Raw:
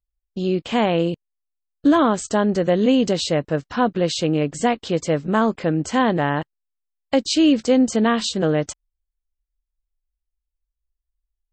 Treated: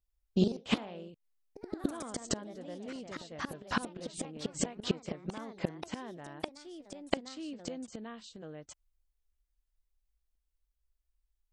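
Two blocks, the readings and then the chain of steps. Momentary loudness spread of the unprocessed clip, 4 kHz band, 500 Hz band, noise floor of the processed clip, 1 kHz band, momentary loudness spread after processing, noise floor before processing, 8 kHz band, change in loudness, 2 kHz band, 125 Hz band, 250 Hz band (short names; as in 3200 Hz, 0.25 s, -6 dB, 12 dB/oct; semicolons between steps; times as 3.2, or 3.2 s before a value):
7 LU, -15.5 dB, -19.5 dB, -81 dBFS, -20.0 dB, 14 LU, -82 dBFS, -11.5 dB, -18.0 dB, -15.5 dB, -15.5 dB, -18.0 dB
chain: flipped gate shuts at -16 dBFS, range -27 dB; echoes that change speed 85 ms, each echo +2 st, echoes 3, each echo -6 dB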